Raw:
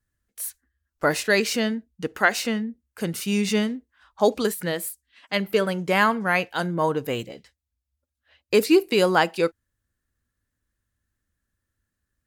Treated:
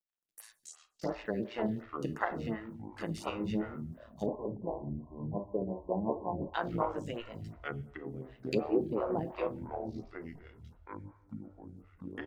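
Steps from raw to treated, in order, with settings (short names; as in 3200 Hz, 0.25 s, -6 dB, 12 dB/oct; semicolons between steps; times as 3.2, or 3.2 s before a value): treble ducked by the level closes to 580 Hz, closed at -17 dBFS; low shelf 190 Hz -6.5 dB; notches 60/120/180 Hz; comb 1.1 ms, depth 34%; AM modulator 110 Hz, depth 75%; requantised 12-bit, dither none; shoebox room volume 530 m³, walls furnished, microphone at 0.78 m; echoes that change speed 0.118 s, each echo -6 st, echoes 3, each echo -6 dB; 4.26–6.54 brick-wall FIR low-pass 1100 Hz; photocell phaser 2.8 Hz; gain -2.5 dB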